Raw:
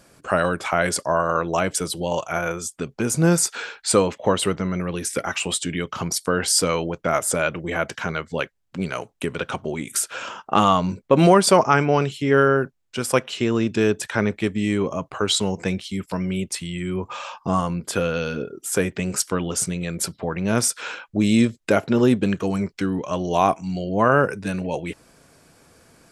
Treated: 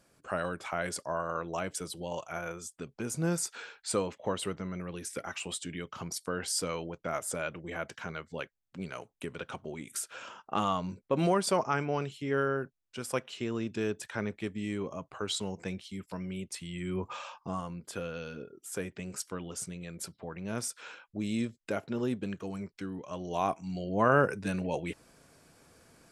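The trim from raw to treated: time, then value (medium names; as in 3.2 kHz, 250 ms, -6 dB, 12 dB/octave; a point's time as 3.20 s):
16.47 s -13 dB
17.06 s -6.5 dB
17.56 s -15 dB
23.02 s -15 dB
24.19 s -6.5 dB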